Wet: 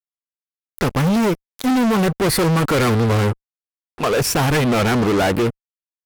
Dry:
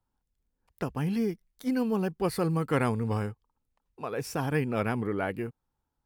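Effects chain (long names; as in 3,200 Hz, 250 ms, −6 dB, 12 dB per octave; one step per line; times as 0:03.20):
harmonic generator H 2 −13 dB, 3 −29 dB, 5 −31 dB, 7 −30 dB, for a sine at −14 dBFS
fuzz pedal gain 41 dB, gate −49 dBFS
level −1.5 dB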